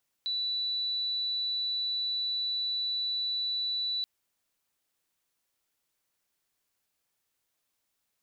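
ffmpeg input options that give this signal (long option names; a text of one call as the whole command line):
ffmpeg -f lavfi -i "aevalsrc='0.0376*sin(2*PI*3960*t)':duration=3.78:sample_rate=44100" out.wav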